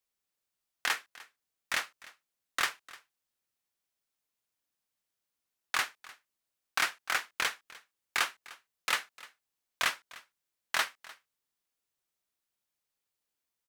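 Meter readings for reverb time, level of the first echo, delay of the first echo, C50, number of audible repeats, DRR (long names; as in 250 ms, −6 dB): no reverb audible, −20.5 dB, 301 ms, no reverb audible, 1, no reverb audible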